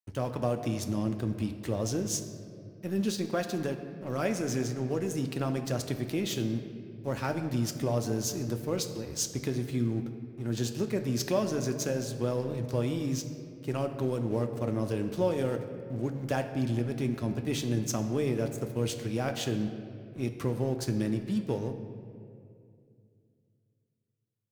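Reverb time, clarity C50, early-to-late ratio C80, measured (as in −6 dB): 2.4 s, 8.5 dB, 9.5 dB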